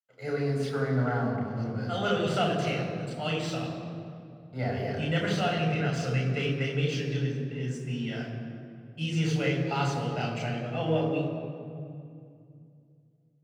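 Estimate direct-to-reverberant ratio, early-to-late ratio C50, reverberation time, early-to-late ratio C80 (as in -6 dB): -1.0 dB, 3.5 dB, 2.4 s, 5.0 dB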